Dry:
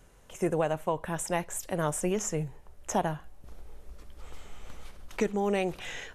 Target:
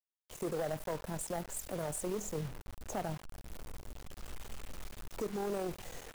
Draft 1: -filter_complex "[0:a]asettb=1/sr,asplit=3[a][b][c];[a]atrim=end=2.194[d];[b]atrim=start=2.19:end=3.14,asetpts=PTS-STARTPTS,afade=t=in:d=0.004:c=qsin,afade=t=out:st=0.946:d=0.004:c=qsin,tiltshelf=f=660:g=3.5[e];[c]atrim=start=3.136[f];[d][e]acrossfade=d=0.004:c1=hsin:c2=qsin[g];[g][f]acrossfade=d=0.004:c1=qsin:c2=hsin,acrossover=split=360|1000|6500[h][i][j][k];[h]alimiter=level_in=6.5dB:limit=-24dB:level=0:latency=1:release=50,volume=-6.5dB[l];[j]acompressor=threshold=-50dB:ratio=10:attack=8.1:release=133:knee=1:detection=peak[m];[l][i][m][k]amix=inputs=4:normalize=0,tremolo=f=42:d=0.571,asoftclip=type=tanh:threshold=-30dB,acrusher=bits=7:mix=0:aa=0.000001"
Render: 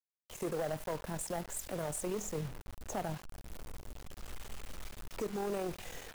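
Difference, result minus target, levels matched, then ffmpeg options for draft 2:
compressor: peak gain reduction -6.5 dB
-filter_complex "[0:a]asettb=1/sr,asplit=3[a][b][c];[a]atrim=end=2.194[d];[b]atrim=start=2.19:end=3.14,asetpts=PTS-STARTPTS,afade=t=in:d=0.004:c=qsin,afade=t=out:st=0.946:d=0.004:c=qsin,tiltshelf=f=660:g=3.5[e];[c]atrim=start=3.136[f];[d][e]acrossfade=d=0.004:c1=hsin:c2=qsin[g];[g][f]acrossfade=d=0.004:c1=qsin:c2=hsin,acrossover=split=360|1000|6500[h][i][j][k];[h]alimiter=level_in=6.5dB:limit=-24dB:level=0:latency=1:release=50,volume=-6.5dB[l];[j]acompressor=threshold=-57dB:ratio=10:attack=8.1:release=133:knee=1:detection=peak[m];[l][i][m][k]amix=inputs=4:normalize=0,tremolo=f=42:d=0.571,asoftclip=type=tanh:threshold=-30dB,acrusher=bits=7:mix=0:aa=0.000001"

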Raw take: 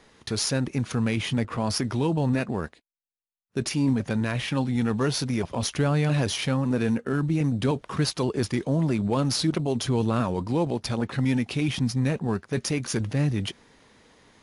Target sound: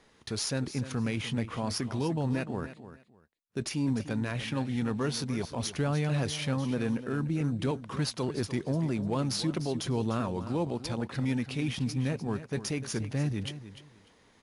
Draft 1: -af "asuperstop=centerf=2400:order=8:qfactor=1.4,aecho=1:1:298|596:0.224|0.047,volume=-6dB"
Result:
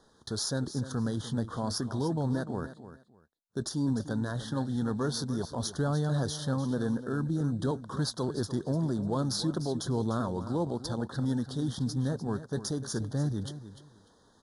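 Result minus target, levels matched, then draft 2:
2000 Hz band -5.0 dB
-af "aecho=1:1:298|596:0.224|0.047,volume=-6dB"

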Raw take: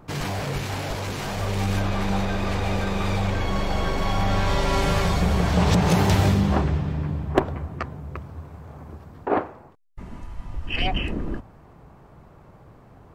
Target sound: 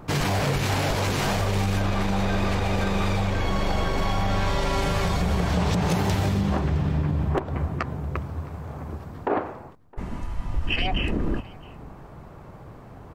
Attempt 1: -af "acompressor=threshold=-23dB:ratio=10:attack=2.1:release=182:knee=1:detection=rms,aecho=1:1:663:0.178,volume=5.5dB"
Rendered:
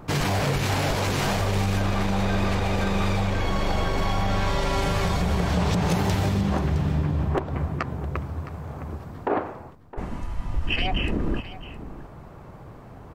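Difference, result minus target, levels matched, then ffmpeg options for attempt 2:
echo-to-direct +8.5 dB
-af "acompressor=threshold=-23dB:ratio=10:attack=2.1:release=182:knee=1:detection=rms,aecho=1:1:663:0.0668,volume=5.5dB"

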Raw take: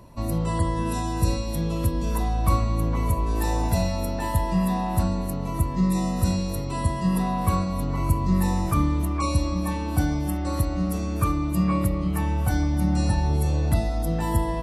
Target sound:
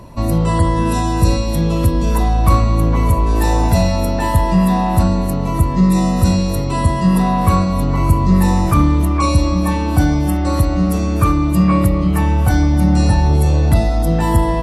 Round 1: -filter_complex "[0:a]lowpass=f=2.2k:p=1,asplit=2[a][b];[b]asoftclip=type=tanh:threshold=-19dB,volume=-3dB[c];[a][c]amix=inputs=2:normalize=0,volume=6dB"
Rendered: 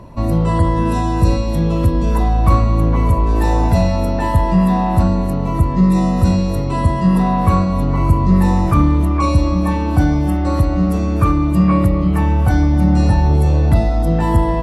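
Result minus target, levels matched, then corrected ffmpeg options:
8000 Hz band -8.5 dB
-filter_complex "[0:a]lowpass=f=8.3k:p=1,asplit=2[a][b];[b]asoftclip=type=tanh:threshold=-19dB,volume=-3dB[c];[a][c]amix=inputs=2:normalize=0,volume=6dB"

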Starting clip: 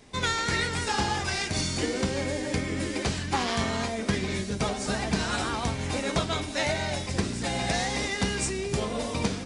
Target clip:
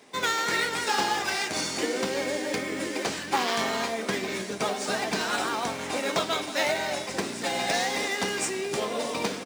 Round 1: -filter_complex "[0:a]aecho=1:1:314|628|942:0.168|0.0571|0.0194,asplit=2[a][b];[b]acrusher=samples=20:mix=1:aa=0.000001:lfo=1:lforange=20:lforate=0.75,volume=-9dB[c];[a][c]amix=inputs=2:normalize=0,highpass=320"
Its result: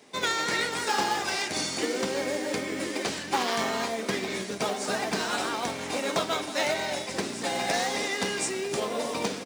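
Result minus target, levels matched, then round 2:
decimation with a swept rate: distortion +6 dB
-filter_complex "[0:a]aecho=1:1:314|628|942:0.168|0.0571|0.0194,asplit=2[a][b];[b]acrusher=samples=6:mix=1:aa=0.000001:lfo=1:lforange=6:lforate=0.75,volume=-9dB[c];[a][c]amix=inputs=2:normalize=0,highpass=320"

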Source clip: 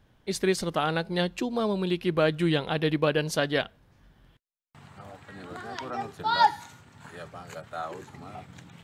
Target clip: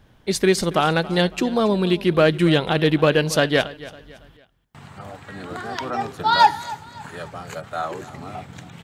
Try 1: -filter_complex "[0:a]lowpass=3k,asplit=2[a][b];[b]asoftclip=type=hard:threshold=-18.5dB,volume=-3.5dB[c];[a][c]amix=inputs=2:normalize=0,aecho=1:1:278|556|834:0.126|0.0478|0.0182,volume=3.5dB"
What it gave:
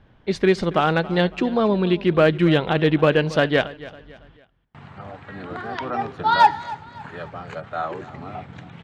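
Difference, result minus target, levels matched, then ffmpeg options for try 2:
4000 Hz band -4.0 dB
-filter_complex "[0:a]asplit=2[a][b];[b]asoftclip=type=hard:threshold=-18.5dB,volume=-3.5dB[c];[a][c]amix=inputs=2:normalize=0,aecho=1:1:278|556|834:0.126|0.0478|0.0182,volume=3.5dB"

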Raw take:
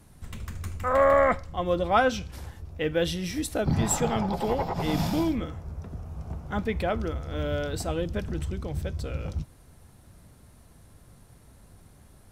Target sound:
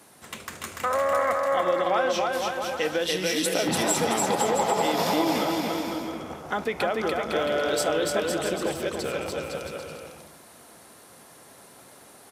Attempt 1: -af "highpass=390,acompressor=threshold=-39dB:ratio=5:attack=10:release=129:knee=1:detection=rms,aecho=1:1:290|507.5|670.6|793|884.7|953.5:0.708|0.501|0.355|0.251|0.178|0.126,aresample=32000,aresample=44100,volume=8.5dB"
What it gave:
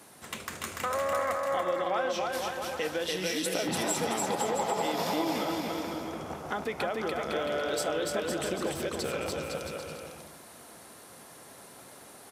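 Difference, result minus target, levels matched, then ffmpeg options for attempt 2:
compressor: peak gain reduction +6 dB
-af "highpass=390,acompressor=threshold=-31.5dB:ratio=5:attack=10:release=129:knee=1:detection=rms,aecho=1:1:290|507.5|670.6|793|884.7|953.5:0.708|0.501|0.355|0.251|0.178|0.126,aresample=32000,aresample=44100,volume=8.5dB"

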